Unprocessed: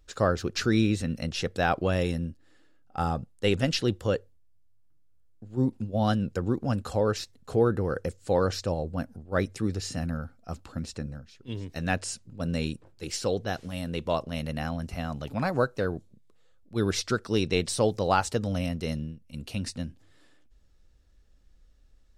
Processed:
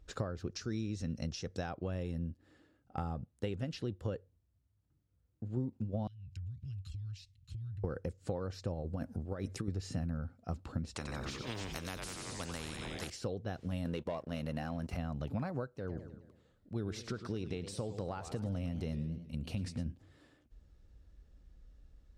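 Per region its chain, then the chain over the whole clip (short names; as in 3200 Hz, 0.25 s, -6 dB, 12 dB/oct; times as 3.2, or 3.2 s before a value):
0.5–1.71 bell 5800 Hz +13.5 dB 0.73 oct + mismatched tape noise reduction decoder only
6.07–7.84 Chebyshev band-stop 110–2600 Hz, order 3 + high shelf 7600 Hz -12 dB + compressor 16:1, threshold -44 dBFS
8.82–9.68 tone controls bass -3 dB, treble +4 dB + negative-ratio compressor -34 dBFS
10.96–13.1 frequency-shifting echo 91 ms, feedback 56%, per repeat -140 Hz, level -11 dB + spectral compressor 4:1
13.85–14.97 low shelf 160 Hz -11.5 dB + sample leveller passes 2
15.75–19.86 compressor 2:1, threshold -38 dBFS + warbling echo 0.105 s, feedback 49%, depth 194 cents, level -13 dB
whole clip: compressor 12:1, threshold -36 dBFS; HPF 46 Hz; tilt -2 dB/oct; gain -1.5 dB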